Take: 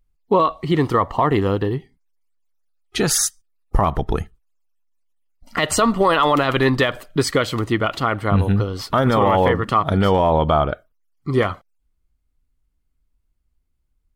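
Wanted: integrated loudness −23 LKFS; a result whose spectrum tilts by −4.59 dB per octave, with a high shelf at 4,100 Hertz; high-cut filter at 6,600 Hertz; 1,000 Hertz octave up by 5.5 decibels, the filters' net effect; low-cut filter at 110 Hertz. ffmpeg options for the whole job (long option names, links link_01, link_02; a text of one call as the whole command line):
ffmpeg -i in.wav -af "highpass=110,lowpass=6600,equalizer=frequency=1000:width_type=o:gain=7,highshelf=frequency=4100:gain=-5,volume=-6dB" out.wav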